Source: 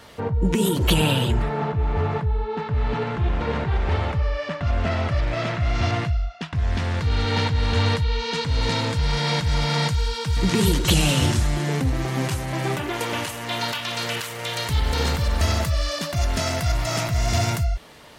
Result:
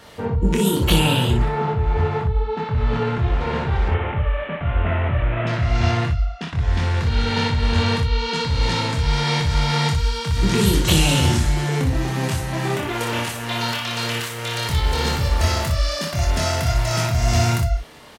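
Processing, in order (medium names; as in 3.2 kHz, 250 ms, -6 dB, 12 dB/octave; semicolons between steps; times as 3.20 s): 3.88–5.47 s: CVSD coder 16 kbps; early reflections 25 ms -4 dB, 60 ms -5 dB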